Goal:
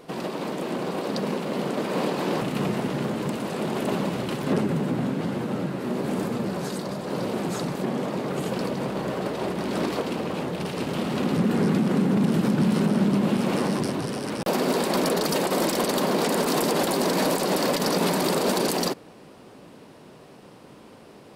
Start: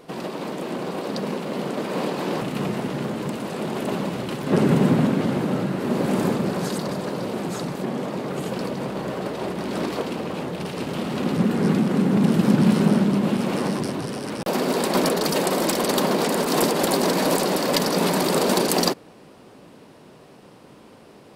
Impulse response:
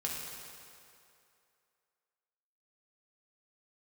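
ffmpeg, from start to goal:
-filter_complex "[0:a]alimiter=limit=-13.5dB:level=0:latency=1:release=67,asplit=3[a][b][c];[a]afade=t=out:st=4.6:d=0.02[d];[b]flanger=delay=8.4:depth=8:regen=53:speed=1.1:shape=sinusoidal,afade=t=in:st=4.6:d=0.02,afade=t=out:st=7.09:d=0.02[e];[c]afade=t=in:st=7.09:d=0.02[f];[d][e][f]amix=inputs=3:normalize=0"

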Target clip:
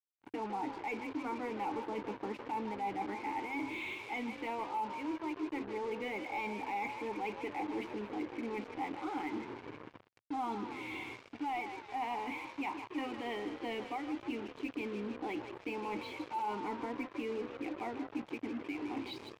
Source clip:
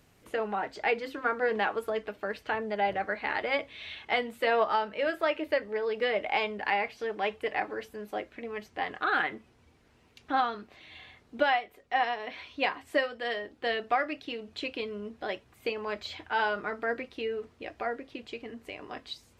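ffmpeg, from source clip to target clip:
-filter_complex "[0:a]lowshelf=f=440:g=10,dynaudnorm=f=100:g=3:m=14dB,asplit=3[a][b][c];[a]bandpass=f=300:t=q:w=8,volume=0dB[d];[b]bandpass=f=870:t=q:w=8,volume=-6dB[e];[c]bandpass=f=2.24k:t=q:w=8,volume=-9dB[f];[d][e][f]amix=inputs=3:normalize=0,areverse,acompressor=threshold=-41dB:ratio=6,areverse,crystalizer=i=4:c=0,asplit=2[g][h];[h]asplit=8[i][j][k][l][m][n][o][p];[i]adelay=156,afreqshift=44,volume=-11dB[q];[j]adelay=312,afreqshift=88,volume=-15dB[r];[k]adelay=468,afreqshift=132,volume=-19dB[s];[l]adelay=624,afreqshift=176,volume=-23dB[t];[m]adelay=780,afreqshift=220,volume=-27.1dB[u];[n]adelay=936,afreqshift=264,volume=-31.1dB[v];[o]adelay=1092,afreqshift=308,volume=-35.1dB[w];[p]adelay=1248,afreqshift=352,volume=-39.1dB[x];[q][r][s][t][u][v][w][x]amix=inputs=8:normalize=0[y];[g][y]amix=inputs=2:normalize=0,acrusher=bits=7:mix=0:aa=0.5,equalizer=f=110:w=2:g=11,asplit=2[z][aa];[aa]highpass=f=720:p=1,volume=11dB,asoftclip=type=tanh:threshold=-29.5dB[ab];[z][ab]amix=inputs=2:normalize=0,lowpass=f=1k:p=1,volume=-6dB,volume=3.5dB"

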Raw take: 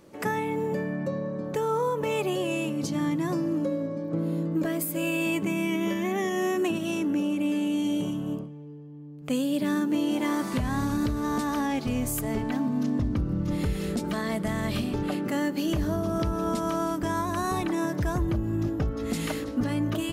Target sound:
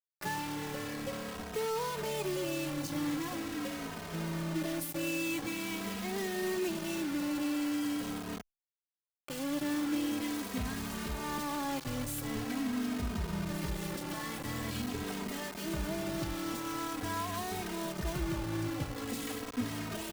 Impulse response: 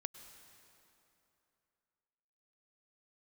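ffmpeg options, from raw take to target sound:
-filter_complex "[0:a]acrusher=bits=4:mix=0:aa=0.000001,asplit=2[a][b];[b]adelay=2.9,afreqshift=-0.44[c];[a][c]amix=inputs=2:normalize=1,volume=-6.5dB"

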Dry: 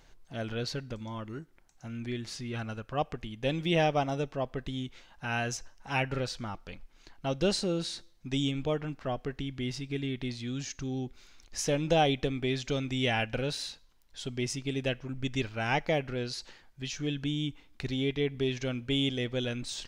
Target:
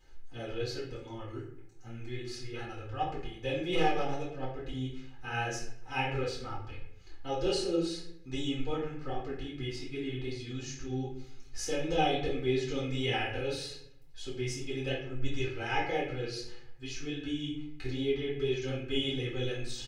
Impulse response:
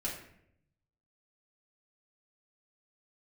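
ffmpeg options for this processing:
-filter_complex "[0:a]flanger=delay=17:depth=6.4:speed=2.6,asplit=3[a][b][c];[a]afade=t=out:st=3.71:d=0.02[d];[b]aeval=exprs='0.141*(cos(1*acos(clip(val(0)/0.141,-1,1)))-cos(1*PI/2))+0.0316*(cos(2*acos(clip(val(0)/0.141,-1,1)))-cos(2*PI/2))+0.00708*(cos(7*acos(clip(val(0)/0.141,-1,1)))-cos(7*PI/2))':c=same,afade=t=in:st=3.71:d=0.02,afade=t=out:st=4.65:d=0.02[e];[c]afade=t=in:st=4.65:d=0.02[f];[d][e][f]amix=inputs=3:normalize=0,aecho=1:1:2.4:0.91[g];[1:a]atrim=start_sample=2205[h];[g][h]afir=irnorm=-1:irlink=0,volume=-4.5dB"

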